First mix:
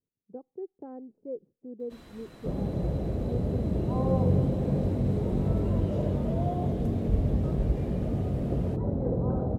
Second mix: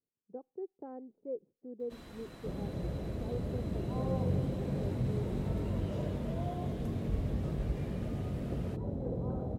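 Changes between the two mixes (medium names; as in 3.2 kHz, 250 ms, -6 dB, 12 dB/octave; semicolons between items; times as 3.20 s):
speech: add bass shelf 260 Hz -9 dB; second sound -8.0 dB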